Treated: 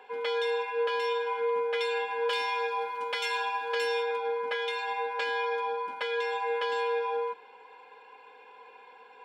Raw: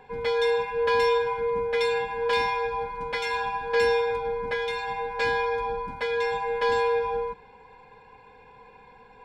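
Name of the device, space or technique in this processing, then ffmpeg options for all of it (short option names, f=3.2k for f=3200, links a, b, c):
laptop speaker: -filter_complex "[0:a]highpass=f=330:w=0.5412,highpass=f=330:w=1.3066,equalizer=f=1.3k:t=o:w=0.35:g=6.5,equalizer=f=3k:t=o:w=0.33:g=10,alimiter=limit=-19.5dB:level=0:latency=1:release=323,asettb=1/sr,asplit=3[a][b][c];[a]atrim=end=2.294[d];[b]atrim=start=2.29:end=4.03,asetpts=PTS-STARTPTS,afade=t=in:d=0.004:c=qsin,afade=t=out:st=1.736:d=0.004:c=qsin,aemphasis=mode=production:type=cd[e];[c]atrim=start=4.026[f];[d][e]acrossfade=d=0.004:c1=hsin:c2=qsin[g];[g][f]acrossfade=d=0.004:c1=qsin:c2=hsin,volume=-1.5dB"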